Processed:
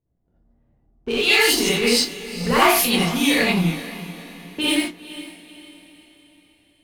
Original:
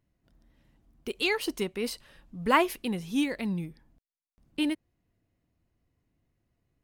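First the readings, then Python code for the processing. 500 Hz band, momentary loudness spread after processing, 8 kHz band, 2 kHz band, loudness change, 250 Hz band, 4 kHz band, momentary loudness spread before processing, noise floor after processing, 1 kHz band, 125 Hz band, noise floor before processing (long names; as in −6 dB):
+10.0 dB, 20 LU, +20.0 dB, +13.0 dB, +11.5 dB, +8.5 dB, +16.5 dB, 18 LU, −65 dBFS, +8.5 dB, +12.5 dB, below −85 dBFS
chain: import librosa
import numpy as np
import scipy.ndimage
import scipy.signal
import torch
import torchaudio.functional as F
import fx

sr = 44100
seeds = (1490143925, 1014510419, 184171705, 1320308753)

p1 = fx.spec_trails(x, sr, decay_s=0.32)
p2 = fx.env_lowpass(p1, sr, base_hz=620.0, full_db=-24.5)
p3 = fx.high_shelf(p2, sr, hz=2400.0, db=9.0)
p4 = fx.hum_notches(p3, sr, base_hz=50, count=6)
p5 = fx.leveller(p4, sr, passes=2)
p6 = fx.over_compress(p5, sr, threshold_db=-24.0, ratio=-1.0)
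p7 = p5 + (p6 * librosa.db_to_amplitude(2.5))
p8 = fx.echo_diffused(p7, sr, ms=462, feedback_pct=45, wet_db=-15.0)
p9 = fx.rev_gated(p8, sr, seeds[0], gate_ms=110, shape='rising', drr_db=-8.0)
y = p9 * librosa.db_to_amplitude(-11.0)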